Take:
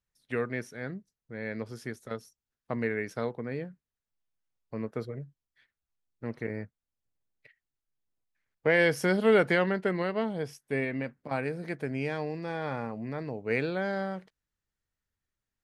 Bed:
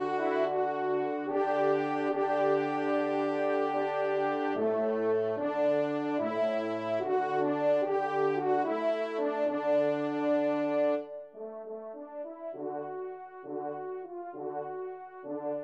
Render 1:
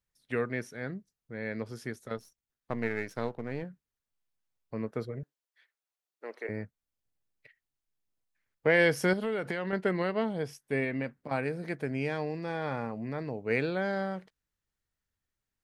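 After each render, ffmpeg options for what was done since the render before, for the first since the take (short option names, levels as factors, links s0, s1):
-filter_complex "[0:a]asettb=1/sr,asplit=3[s0][s1][s2];[s0]atrim=end=2.174[s3];[s1]atrim=start=2.17:end=3.63,asetpts=PTS-STARTPTS,afade=t=in:d=0.004:c=qsin,afade=t=out:st=1.456:d=0.004:c=qsin,aeval=exprs='if(lt(val(0),0),0.447*val(0),val(0))':c=same[s4];[s2]atrim=start=3.626[s5];[s3][s4]acrossfade=d=0.004:c1=hsin:c2=qsin[s6];[s6][s5]acrossfade=d=0.004:c1=qsin:c2=hsin,asettb=1/sr,asplit=3[s7][s8][s9];[s7]atrim=end=5.234[s10];[s8]atrim=start=5.23:end=6.49,asetpts=PTS-STARTPTS,afade=t=in:d=0.004:c=qsin,afade=t=out:st=1.256:d=0.004:c=qsin,highpass=f=400:w=0.5412,highpass=f=400:w=1.3066[s11];[s9]atrim=start=6.486[s12];[s10][s11]acrossfade=d=0.004:c1=hsin:c2=qsin[s13];[s13][s12]acrossfade=d=0.004:c1=qsin:c2=hsin,asettb=1/sr,asplit=3[s14][s15][s16];[s14]atrim=end=9.134[s17];[s15]atrim=start=9.13:end=9.73,asetpts=PTS-STARTPTS,afade=t=in:d=0.004:c=qsin,afade=t=out:st=0.596:d=0.004:c=qsin,acompressor=threshold=0.0355:ratio=6:attack=3.2:release=140:knee=1:detection=peak[s18];[s16]atrim=start=9.726[s19];[s17][s18]acrossfade=d=0.004:c1=hsin:c2=qsin[s20];[s20][s19]acrossfade=d=0.004:c1=qsin:c2=hsin"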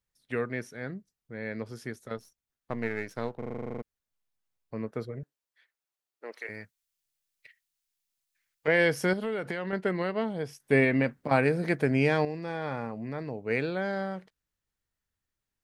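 -filter_complex "[0:a]asettb=1/sr,asplit=3[s0][s1][s2];[s0]atrim=end=6.324[s3];[s1]atrim=start=6.32:end=8.68,asetpts=PTS-STARTPTS,afade=t=in:d=0.004:c=qsin,afade=t=out:st=2.356:d=0.004:c=qsin,tiltshelf=f=1300:g=-9.5[s4];[s2]atrim=start=8.676[s5];[s3][s4]acrossfade=d=0.004:c1=hsin:c2=qsin[s6];[s6][s5]acrossfade=d=0.004:c1=qsin:c2=hsin,asplit=14[s7][s8][s9][s10][s11][s12][s13][s14][s15][s16][s17][s18][s19][s20];[s7]atrim=end=3.422[s21];[s8]atrim=start=3.378:end=3.422[s22];[s9]atrim=start=3.378:end=3.422[s23];[s10]atrim=start=3.378:end=3.422[s24];[s11]atrim=start=3.378:end=3.422[s25];[s12]atrim=start=3.378:end=3.422[s26];[s13]atrim=start=3.378:end=3.422[s27];[s14]atrim=start=3.378:end=3.422[s28];[s15]atrim=start=3.378:end=3.422[s29];[s16]atrim=start=3.378:end=3.422[s30];[s17]atrim=start=3.378:end=3.422[s31];[s18]atrim=start=3.818:end=10.602[s32];[s19]atrim=start=10.598:end=12.252,asetpts=PTS-STARTPTS,volume=2.51[s33];[s20]atrim=start=12.248[s34];[s21][s22]acrossfade=d=0.004:c1=hsin:c2=hsin[s35];[s35][s23]acrossfade=d=0.004:c1=hsin:c2=hsin[s36];[s36][s24]acrossfade=d=0.004:c1=hsin:c2=hsin[s37];[s37][s25]acrossfade=d=0.004:c1=hsin:c2=hsin[s38];[s38][s26]acrossfade=d=0.004:c1=hsin:c2=hsin[s39];[s39][s27]acrossfade=d=0.004:c1=hsin:c2=hsin[s40];[s40][s28]acrossfade=d=0.004:c1=hsin:c2=hsin[s41];[s41][s29]acrossfade=d=0.004:c1=hsin:c2=hsin[s42];[s42][s30]acrossfade=d=0.004:c1=hsin:c2=hsin[s43];[s43][s31]acrossfade=d=0.004:c1=hsin:c2=hsin[s44];[s44][s32]acrossfade=d=0.004:c1=hsin:c2=hsin[s45];[s45][s33]acrossfade=d=0.004:c1=hsin:c2=hsin[s46];[s46][s34]acrossfade=d=0.004:c1=hsin:c2=hsin"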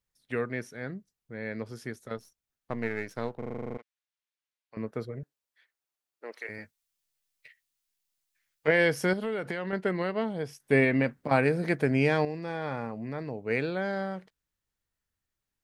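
-filter_complex "[0:a]asettb=1/sr,asplit=3[s0][s1][s2];[s0]atrim=end=3.774[s3];[s1]atrim=start=3.77:end=4.77,asetpts=PTS-STARTPTS,afade=t=in:d=0.004:c=qsin,afade=t=out:st=0.996:d=0.004:c=qsin,bandpass=f=2700:t=q:w=0.78[s4];[s2]atrim=start=4.766[s5];[s3][s4]acrossfade=d=0.004:c1=hsin:c2=qsin[s6];[s6][s5]acrossfade=d=0.004:c1=qsin:c2=hsin,asettb=1/sr,asplit=3[s7][s8][s9];[s7]atrim=end=6.574[s10];[s8]atrim=start=6.57:end=8.71,asetpts=PTS-STARTPTS,afade=t=in:d=0.004:c=qsin,afade=t=out:st=2.136:d=0.004:c=qsin,asplit=2[s11][s12];[s12]adelay=13,volume=0.531[s13];[s11][s13]amix=inputs=2:normalize=0,atrim=end_sample=94374[s14];[s9]atrim=start=8.706[s15];[s10][s14]acrossfade=d=0.004:c1=hsin:c2=qsin[s16];[s16][s15]acrossfade=d=0.004:c1=qsin:c2=hsin"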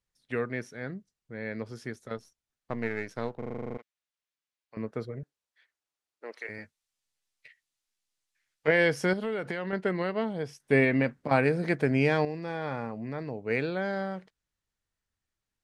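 -af "lowpass=8900"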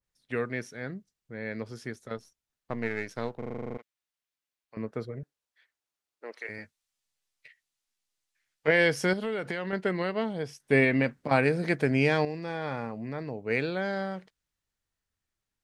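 -af "adynamicequalizer=threshold=0.0112:dfrequency=2200:dqfactor=0.7:tfrequency=2200:tqfactor=0.7:attack=5:release=100:ratio=0.375:range=2:mode=boostabove:tftype=highshelf"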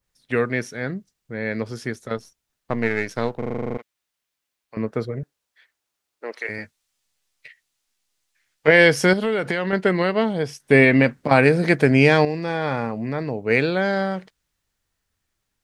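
-af "volume=2.99,alimiter=limit=0.891:level=0:latency=1"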